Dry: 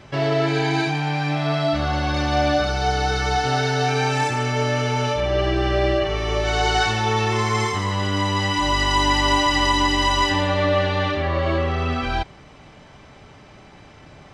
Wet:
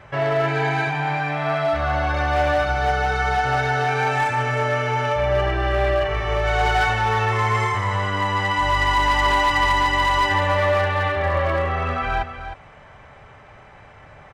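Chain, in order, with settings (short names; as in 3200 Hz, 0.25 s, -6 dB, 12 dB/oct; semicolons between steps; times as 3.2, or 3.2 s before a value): EQ curve 110 Hz 0 dB, 200 Hz -7 dB, 320 Hz -9 dB, 500 Hz +1 dB, 1800 Hz +4 dB, 4800 Hz -12 dB, 8100 Hz -6 dB; hard clip -14 dBFS, distortion -19 dB; on a send: echo 0.31 s -10.5 dB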